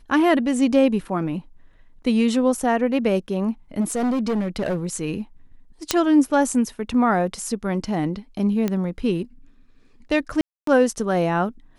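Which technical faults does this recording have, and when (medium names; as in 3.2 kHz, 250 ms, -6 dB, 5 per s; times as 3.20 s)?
3.80–4.77 s: clipped -19 dBFS
5.91 s: pop -2 dBFS
8.68 s: pop -11 dBFS
10.41–10.67 s: dropout 263 ms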